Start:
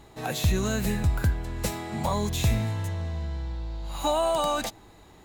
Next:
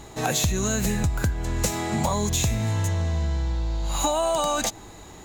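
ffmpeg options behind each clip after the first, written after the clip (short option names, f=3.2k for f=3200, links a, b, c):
-af "equalizer=f=6.7k:w=2.7:g=9,acompressor=threshold=-28dB:ratio=10,volume=8dB"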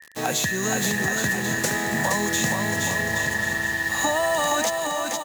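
-filter_complex "[0:a]acrossover=split=130[a][b];[a]aeval=exprs='val(0)*sin(2*PI*1800*n/s)':c=same[c];[b]acrusher=bits=5:mix=0:aa=0.000001[d];[c][d]amix=inputs=2:normalize=0,aecho=1:1:470|822.5|1087|1285|1434:0.631|0.398|0.251|0.158|0.1"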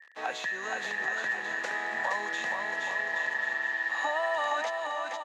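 -af "highpass=710,lowpass=2.5k,volume=-4dB"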